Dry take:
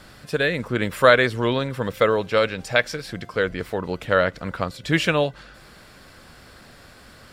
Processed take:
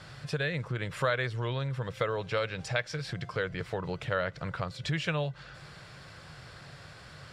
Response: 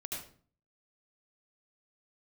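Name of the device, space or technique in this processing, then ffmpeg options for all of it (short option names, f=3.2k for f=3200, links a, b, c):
jukebox: -af "lowpass=7.2k,lowshelf=f=180:t=q:w=3:g=8,acompressor=threshold=-26dB:ratio=3,highpass=f=230:p=1,volume=-1.5dB"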